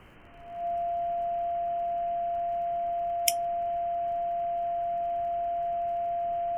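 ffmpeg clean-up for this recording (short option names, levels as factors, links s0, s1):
-af "adeclick=t=4,bandreject=f=690:w=30,afftdn=nr=30:nf=-30"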